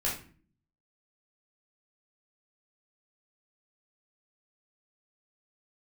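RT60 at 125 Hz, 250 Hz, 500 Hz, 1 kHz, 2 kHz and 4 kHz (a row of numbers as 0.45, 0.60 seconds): 0.80, 0.75, 0.50, 0.40, 0.40, 0.30 seconds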